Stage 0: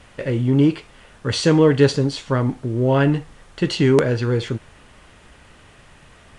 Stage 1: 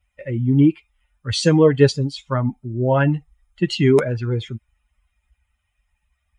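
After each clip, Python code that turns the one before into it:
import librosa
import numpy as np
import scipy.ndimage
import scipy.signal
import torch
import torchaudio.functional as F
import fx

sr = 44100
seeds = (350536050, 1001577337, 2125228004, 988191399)

y = fx.bin_expand(x, sr, power=2.0)
y = scipy.signal.sosfilt(scipy.signal.butter(2, 50.0, 'highpass', fs=sr, output='sos'), y)
y = y * librosa.db_to_amplitude(3.5)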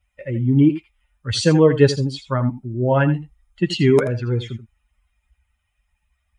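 y = x + 10.0 ** (-13.0 / 20.0) * np.pad(x, (int(82 * sr / 1000.0), 0))[:len(x)]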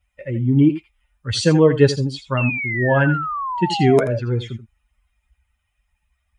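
y = fx.spec_paint(x, sr, seeds[0], shape='fall', start_s=2.37, length_s=1.82, low_hz=560.0, high_hz=2800.0, level_db=-25.0)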